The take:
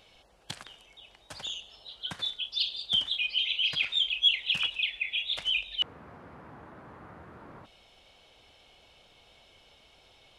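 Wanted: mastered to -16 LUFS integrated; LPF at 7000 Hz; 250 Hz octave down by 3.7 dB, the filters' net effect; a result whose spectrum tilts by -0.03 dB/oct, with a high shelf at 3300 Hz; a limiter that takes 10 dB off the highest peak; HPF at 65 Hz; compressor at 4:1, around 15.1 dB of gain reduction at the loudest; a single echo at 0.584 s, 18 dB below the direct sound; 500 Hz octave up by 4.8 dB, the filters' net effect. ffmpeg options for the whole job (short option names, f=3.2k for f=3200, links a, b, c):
-af "highpass=65,lowpass=7k,equalizer=f=250:t=o:g=-8,equalizer=f=500:t=o:g=8,highshelf=f=3.3k:g=-8.5,acompressor=threshold=-42dB:ratio=4,alimiter=level_in=13dB:limit=-24dB:level=0:latency=1,volume=-13dB,aecho=1:1:584:0.126,volume=30dB"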